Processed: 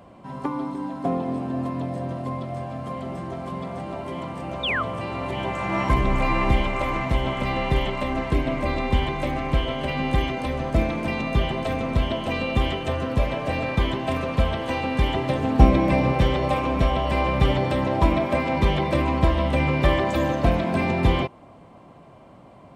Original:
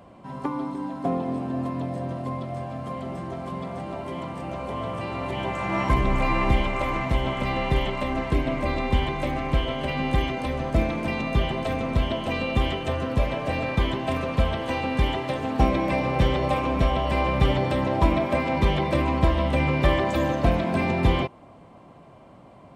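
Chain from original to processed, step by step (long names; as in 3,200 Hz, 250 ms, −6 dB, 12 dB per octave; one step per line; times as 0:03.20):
0:04.63–0:04.83: sound drawn into the spectrogram fall 1,100–3,800 Hz −26 dBFS
0:15.14–0:16.13: low-shelf EQ 340 Hz +7 dB
level +1 dB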